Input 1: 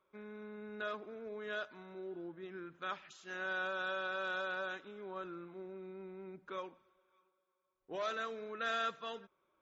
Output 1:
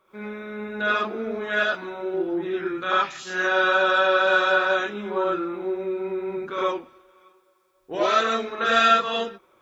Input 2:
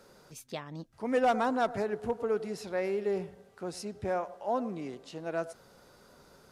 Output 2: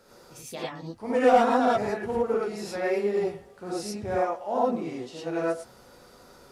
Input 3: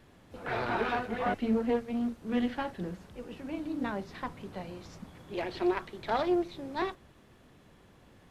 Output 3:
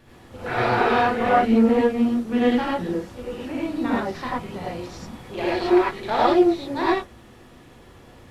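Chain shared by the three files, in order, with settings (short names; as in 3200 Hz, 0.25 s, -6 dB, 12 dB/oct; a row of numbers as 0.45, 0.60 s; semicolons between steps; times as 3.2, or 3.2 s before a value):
non-linear reverb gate 0.13 s rising, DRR -6.5 dB; normalise peaks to -6 dBFS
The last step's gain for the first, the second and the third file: +11.5, -1.5, +4.0 dB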